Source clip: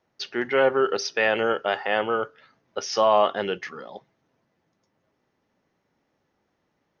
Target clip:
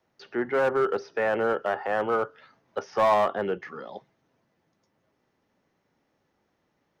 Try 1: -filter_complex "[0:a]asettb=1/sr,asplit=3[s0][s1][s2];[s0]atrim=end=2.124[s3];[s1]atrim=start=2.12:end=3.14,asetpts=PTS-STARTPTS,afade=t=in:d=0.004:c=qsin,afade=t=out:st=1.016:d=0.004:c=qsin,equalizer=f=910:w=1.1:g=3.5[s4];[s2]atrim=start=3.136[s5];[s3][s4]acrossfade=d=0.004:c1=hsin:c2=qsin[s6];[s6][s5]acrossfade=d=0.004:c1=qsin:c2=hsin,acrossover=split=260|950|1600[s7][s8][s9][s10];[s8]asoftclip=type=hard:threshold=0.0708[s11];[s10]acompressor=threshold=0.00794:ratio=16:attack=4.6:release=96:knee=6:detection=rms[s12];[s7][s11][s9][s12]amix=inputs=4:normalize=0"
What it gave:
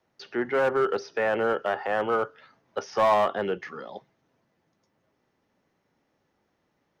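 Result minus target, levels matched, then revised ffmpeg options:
compression: peak gain reduction -6.5 dB
-filter_complex "[0:a]asettb=1/sr,asplit=3[s0][s1][s2];[s0]atrim=end=2.124[s3];[s1]atrim=start=2.12:end=3.14,asetpts=PTS-STARTPTS,afade=t=in:d=0.004:c=qsin,afade=t=out:st=1.016:d=0.004:c=qsin,equalizer=f=910:w=1.1:g=3.5[s4];[s2]atrim=start=3.136[s5];[s3][s4]acrossfade=d=0.004:c1=hsin:c2=qsin[s6];[s6][s5]acrossfade=d=0.004:c1=qsin:c2=hsin,acrossover=split=260|950|1600[s7][s8][s9][s10];[s8]asoftclip=type=hard:threshold=0.0708[s11];[s10]acompressor=threshold=0.00355:ratio=16:attack=4.6:release=96:knee=6:detection=rms[s12];[s7][s11][s9][s12]amix=inputs=4:normalize=0"

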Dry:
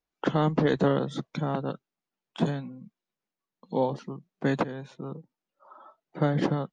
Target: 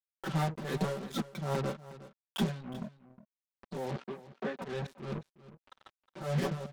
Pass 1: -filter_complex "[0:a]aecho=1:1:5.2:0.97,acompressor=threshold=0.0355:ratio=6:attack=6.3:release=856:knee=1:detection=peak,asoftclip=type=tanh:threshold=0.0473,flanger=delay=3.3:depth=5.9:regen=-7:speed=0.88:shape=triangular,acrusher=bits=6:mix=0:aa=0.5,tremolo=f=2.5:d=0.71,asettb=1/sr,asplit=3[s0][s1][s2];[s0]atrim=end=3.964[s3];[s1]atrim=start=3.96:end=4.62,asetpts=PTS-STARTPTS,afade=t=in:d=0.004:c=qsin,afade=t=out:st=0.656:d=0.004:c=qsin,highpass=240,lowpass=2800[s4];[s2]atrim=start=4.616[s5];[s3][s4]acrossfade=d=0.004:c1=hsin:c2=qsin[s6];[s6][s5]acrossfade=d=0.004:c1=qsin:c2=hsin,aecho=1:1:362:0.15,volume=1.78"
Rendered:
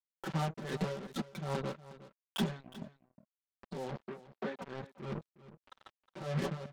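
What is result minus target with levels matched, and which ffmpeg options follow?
compression: peak gain reduction +5.5 dB
-filter_complex "[0:a]aecho=1:1:5.2:0.97,acompressor=threshold=0.075:ratio=6:attack=6.3:release=856:knee=1:detection=peak,asoftclip=type=tanh:threshold=0.0473,flanger=delay=3.3:depth=5.9:regen=-7:speed=0.88:shape=triangular,acrusher=bits=6:mix=0:aa=0.5,tremolo=f=2.5:d=0.71,asettb=1/sr,asplit=3[s0][s1][s2];[s0]atrim=end=3.964[s3];[s1]atrim=start=3.96:end=4.62,asetpts=PTS-STARTPTS,afade=t=in:d=0.004:c=qsin,afade=t=out:st=0.656:d=0.004:c=qsin,highpass=240,lowpass=2800[s4];[s2]atrim=start=4.616[s5];[s3][s4]acrossfade=d=0.004:c1=hsin:c2=qsin[s6];[s6][s5]acrossfade=d=0.004:c1=qsin:c2=hsin,aecho=1:1:362:0.15,volume=1.78"

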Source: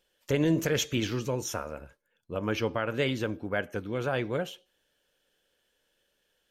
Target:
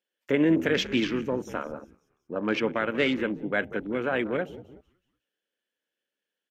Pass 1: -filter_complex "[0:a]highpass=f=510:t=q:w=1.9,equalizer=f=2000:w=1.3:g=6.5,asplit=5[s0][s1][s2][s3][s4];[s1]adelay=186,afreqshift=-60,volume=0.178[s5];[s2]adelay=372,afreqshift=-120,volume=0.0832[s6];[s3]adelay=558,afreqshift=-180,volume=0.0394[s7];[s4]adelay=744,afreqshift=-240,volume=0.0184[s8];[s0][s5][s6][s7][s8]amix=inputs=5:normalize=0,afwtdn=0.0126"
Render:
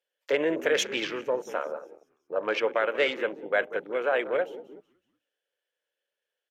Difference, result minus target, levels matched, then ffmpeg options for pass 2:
250 Hz band -9.5 dB
-filter_complex "[0:a]highpass=f=240:t=q:w=1.9,equalizer=f=2000:w=1.3:g=6.5,asplit=5[s0][s1][s2][s3][s4];[s1]adelay=186,afreqshift=-60,volume=0.178[s5];[s2]adelay=372,afreqshift=-120,volume=0.0832[s6];[s3]adelay=558,afreqshift=-180,volume=0.0394[s7];[s4]adelay=744,afreqshift=-240,volume=0.0184[s8];[s0][s5][s6][s7][s8]amix=inputs=5:normalize=0,afwtdn=0.0126"

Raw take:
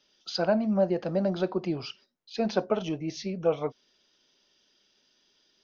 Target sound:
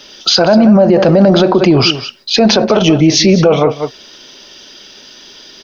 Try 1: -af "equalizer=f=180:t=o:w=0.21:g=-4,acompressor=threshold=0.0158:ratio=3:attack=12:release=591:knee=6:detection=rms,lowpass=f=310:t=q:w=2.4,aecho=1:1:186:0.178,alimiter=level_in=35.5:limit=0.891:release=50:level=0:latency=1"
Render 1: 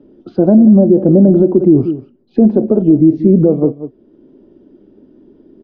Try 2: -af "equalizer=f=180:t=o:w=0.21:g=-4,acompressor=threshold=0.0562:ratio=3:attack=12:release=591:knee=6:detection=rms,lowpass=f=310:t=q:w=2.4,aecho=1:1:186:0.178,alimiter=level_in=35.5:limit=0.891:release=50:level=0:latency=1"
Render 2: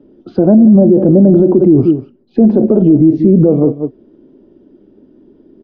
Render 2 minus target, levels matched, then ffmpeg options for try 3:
250 Hz band +2.5 dB
-af "equalizer=f=180:t=o:w=0.21:g=-4,acompressor=threshold=0.0562:ratio=3:attack=12:release=591:knee=6:detection=rms,aecho=1:1:186:0.178,alimiter=level_in=35.5:limit=0.891:release=50:level=0:latency=1"

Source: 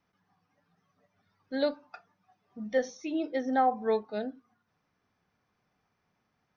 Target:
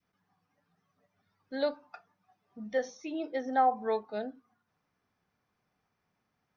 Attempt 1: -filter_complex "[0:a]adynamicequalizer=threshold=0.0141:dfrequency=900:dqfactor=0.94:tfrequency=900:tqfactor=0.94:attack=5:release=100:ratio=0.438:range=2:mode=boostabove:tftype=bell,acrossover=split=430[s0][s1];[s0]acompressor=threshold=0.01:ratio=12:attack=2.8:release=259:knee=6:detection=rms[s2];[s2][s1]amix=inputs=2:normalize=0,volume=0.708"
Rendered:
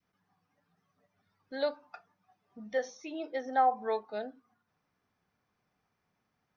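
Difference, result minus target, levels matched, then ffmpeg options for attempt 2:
compression: peak gain reduction +8 dB
-filter_complex "[0:a]adynamicequalizer=threshold=0.0141:dfrequency=900:dqfactor=0.94:tfrequency=900:tqfactor=0.94:attack=5:release=100:ratio=0.438:range=2:mode=boostabove:tftype=bell,acrossover=split=430[s0][s1];[s0]acompressor=threshold=0.0282:ratio=12:attack=2.8:release=259:knee=6:detection=rms[s2];[s2][s1]amix=inputs=2:normalize=0,volume=0.708"

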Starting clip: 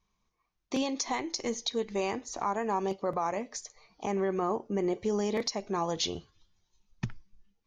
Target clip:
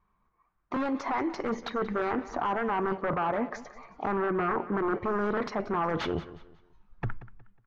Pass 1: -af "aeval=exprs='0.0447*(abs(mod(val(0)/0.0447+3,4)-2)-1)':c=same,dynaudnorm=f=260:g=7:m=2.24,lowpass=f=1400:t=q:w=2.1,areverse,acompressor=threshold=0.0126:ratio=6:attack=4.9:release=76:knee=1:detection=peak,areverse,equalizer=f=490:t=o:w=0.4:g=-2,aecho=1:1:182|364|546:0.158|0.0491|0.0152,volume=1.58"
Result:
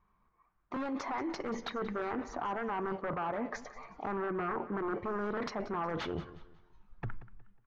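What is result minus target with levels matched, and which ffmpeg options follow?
compression: peak gain reduction +6.5 dB
-af "aeval=exprs='0.0447*(abs(mod(val(0)/0.0447+3,4)-2)-1)':c=same,dynaudnorm=f=260:g=7:m=2.24,lowpass=f=1400:t=q:w=2.1,areverse,acompressor=threshold=0.0316:ratio=6:attack=4.9:release=76:knee=1:detection=peak,areverse,equalizer=f=490:t=o:w=0.4:g=-2,aecho=1:1:182|364|546:0.158|0.0491|0.0152,volume=1.58"

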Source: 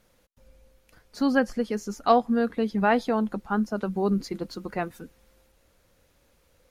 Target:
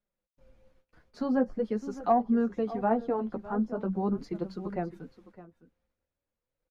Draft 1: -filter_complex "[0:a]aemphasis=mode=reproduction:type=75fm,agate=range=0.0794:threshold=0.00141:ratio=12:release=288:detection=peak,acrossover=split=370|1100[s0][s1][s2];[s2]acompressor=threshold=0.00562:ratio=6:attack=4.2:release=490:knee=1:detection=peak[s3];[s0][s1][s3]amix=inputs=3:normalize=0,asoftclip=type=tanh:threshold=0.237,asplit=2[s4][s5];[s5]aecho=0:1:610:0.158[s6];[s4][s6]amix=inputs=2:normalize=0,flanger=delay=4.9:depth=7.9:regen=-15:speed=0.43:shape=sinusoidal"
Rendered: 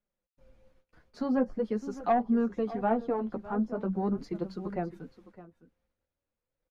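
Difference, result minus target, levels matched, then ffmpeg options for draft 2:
saturation: distortion +14 dB
-filter_complex "[0:a]aemphasis=mode=reproduction:type=75fm,agate=range=0.0794:threshold=0.00141:ratio=12:release=288:detection=peak,acrossover=split=370|1100[s0][s1][s2];[s2]acompressor=threshold=0.00562:ratio=6:attack=4.2:release=490:knee=1:detection=peak[s3];[s0][s1][s3]amix=inputs=3:normalize=0,asoftclip=type=tanh:threshold=0.631,asplit=2[s4][s5];[s5]aecho=0:1:610:0.158[s6];[s4][s6]amix=inputs=2:normalize=0,flanger=delay=4.9:depth=7.9:regen=-15:speed=0.43:shape=sinusoidal"

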